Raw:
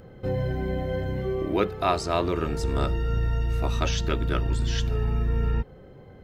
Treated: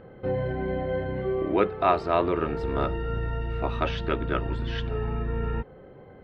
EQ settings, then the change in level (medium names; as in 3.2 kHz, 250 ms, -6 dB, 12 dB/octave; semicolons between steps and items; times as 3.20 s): distance through air 430 m; bass shelf 210 Hz -11.5 dB; +5.0 dB